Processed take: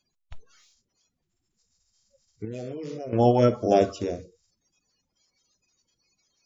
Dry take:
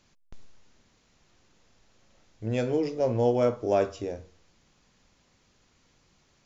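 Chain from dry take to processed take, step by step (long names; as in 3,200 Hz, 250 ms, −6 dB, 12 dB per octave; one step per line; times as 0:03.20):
spectral magnitudes quantised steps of 30 dB
0:02.45–0:03.13: output level in coarse steps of 20 dB
noise reduction from a noise print of the clip's start 20 dB
level +5 dB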